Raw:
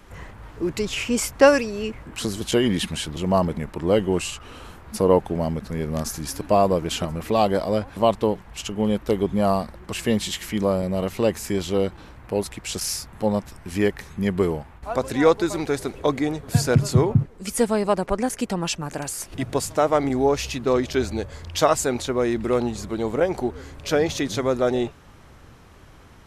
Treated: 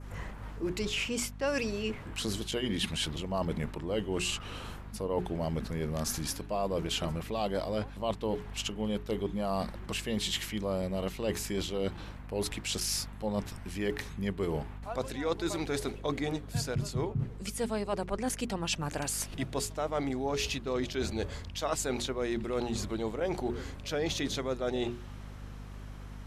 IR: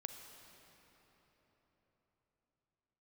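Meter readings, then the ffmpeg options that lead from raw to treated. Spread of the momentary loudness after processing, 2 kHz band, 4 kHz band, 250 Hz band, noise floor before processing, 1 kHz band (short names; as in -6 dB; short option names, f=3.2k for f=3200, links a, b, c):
6 LU, -8.0 dB, -4.5 dB, -10.5 dB, -47 dBFS, -12.0 dB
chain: -af "bandreject=f=60:t=h:w=6,bandreject=f=120:t=h:w=6,bandreject=f=180:t=h:w=6,bandreject=f=240:t=h:w=6,bandreject=f=300:t=h:w=6,bandreject=f=360:t=h:w=6,bandreject=f=420:t=h:w=6,adynamicequalizer=threshold=0.00631:dfrequency=3400:dqfactor=1.2:tfrequency=3400:tqfactor=1.2:attack=5:release=100:ratio=0.375:range=2.5:mode=boostabove:tftype=bell,areverse,acompressor=threshold=-27dB:ratio=6,areverse,aeval=exprs='val(0)+0.00891*(sin(2*PI*50*n/s)+sin(2*PI*2*50*n/s)/2+sin(2*PI*3*50*n/s)/3+sin(2*PI*4*50*n/s)/4+sin(2*PI*5*50*n/s)/5)':c=same,volume=-2.5dB"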